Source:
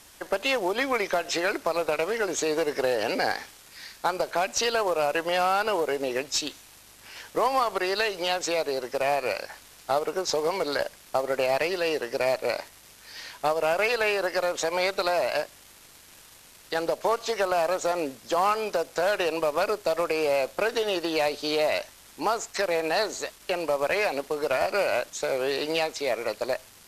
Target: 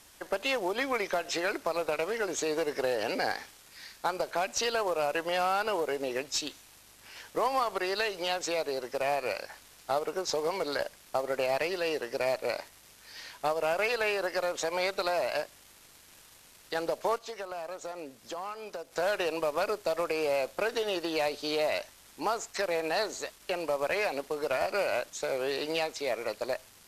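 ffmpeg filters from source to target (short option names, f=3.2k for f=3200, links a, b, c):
-filter_complex "[0:a]asplit=3[a][b][c];[a]afade=t=out:st=17.17:d=0.02[d];[b]acompressor=threshold=-39dB:ratio=2,afade=t=in:st=17.17:d=0.02,afade=t=out:st=18.91:d=0.02[e];[c]afade=t=in:st=18.91:d=0.02[f];[d][e][f]amix=inputs=3:normalize=0,volume=-4.5dB"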